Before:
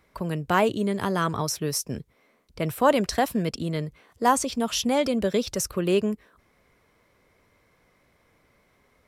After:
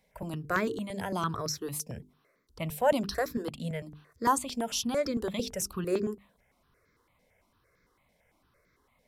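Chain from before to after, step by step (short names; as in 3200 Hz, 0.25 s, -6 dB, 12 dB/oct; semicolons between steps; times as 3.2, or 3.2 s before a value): notches 50/100/150/200/250/300/350/400/450 Hz; step phaser 8.9 Hz 340–2900 Hz; gain -3 dB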